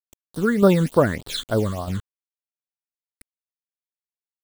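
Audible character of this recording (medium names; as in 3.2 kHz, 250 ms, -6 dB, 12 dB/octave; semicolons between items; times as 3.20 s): a quantiser's noise floor 6-bit, dither none; tremolo saw down 1.6 Hz, depth 50%; phasing stages 8, 3.4 Hz, lowest notch 690–2300 Hz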